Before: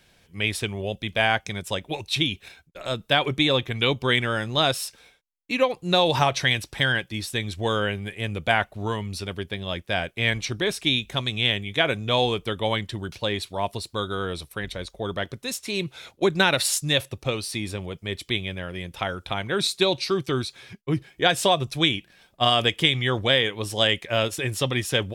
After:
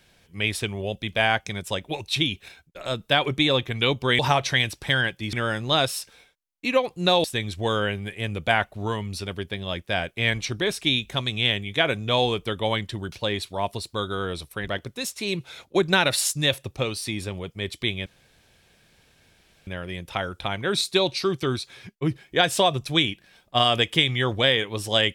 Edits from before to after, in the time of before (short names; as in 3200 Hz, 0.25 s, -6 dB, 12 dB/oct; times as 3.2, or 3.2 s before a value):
6.1–7.24 move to 4.19
14.68–15.15 cut
18.53 insert room tone 1.61 s